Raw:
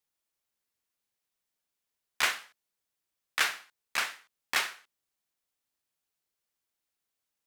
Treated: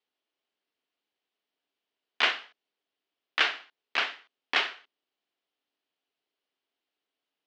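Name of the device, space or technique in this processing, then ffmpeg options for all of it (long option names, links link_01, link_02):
kitchen radio: -af "highpass=220,equalizer=frequency=280:width_type=q:width=4:gain=8,equalizer=frequency=410:width_type=q:width=4:gain=7,equalizer=frequency=690:width_type=q:width=4:gain=5,equalizer=frequency=3000:width_type=q:width=4:gain=6,lowpass=frequency=4500:width=0.5412,lowpass=frequency=4500:width=1.3066,volume=1.5dB"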